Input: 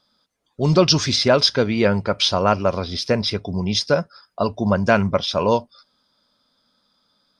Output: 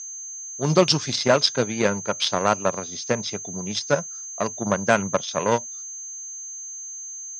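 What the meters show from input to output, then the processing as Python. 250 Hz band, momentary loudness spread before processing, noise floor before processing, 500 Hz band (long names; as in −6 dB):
−5.5 dB, 8 LU, −69 dBFS, −3.5 dB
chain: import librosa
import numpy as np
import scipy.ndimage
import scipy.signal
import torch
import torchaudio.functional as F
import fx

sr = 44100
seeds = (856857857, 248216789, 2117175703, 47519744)

y = fx.cheby_harmonics(x, sr, harmonics=(7,), levels_db=(-21,), full_scale_db=-2.0)
y = y + 10.0 ** (-31.0 / 20.0) * np.sin(2.0 * np.pi * 6300.0 * np.arange(len(y)) / sr)
y = scipy.signal.sosfilt(scipy.signal.ellip(3, 1.0, 40, [120.0, 8000.0], 'bandpass', fs=sr, output='sos'), y)
y = F.gain(torch.from_numpy(y), -1.5).numpy()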